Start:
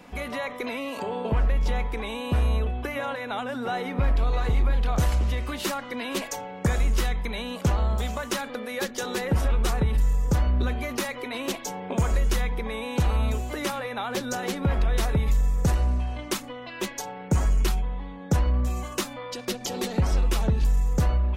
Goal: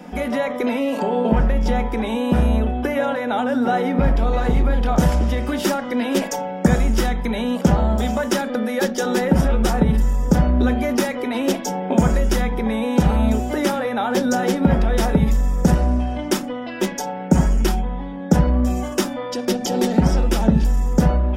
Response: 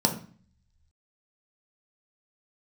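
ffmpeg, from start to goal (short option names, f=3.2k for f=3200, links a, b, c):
-filter_complex "[0:a]asplit=2[a][b];[1:a]atrim=start_sample=2205,atrim=end_sample=3528,lowpass=4.2k[c];[b][c]afir=irnorm=-1:irlink=0,volume=-14dB[d];[a][d]amix=inputs=2:normalize=0,volume=4dB"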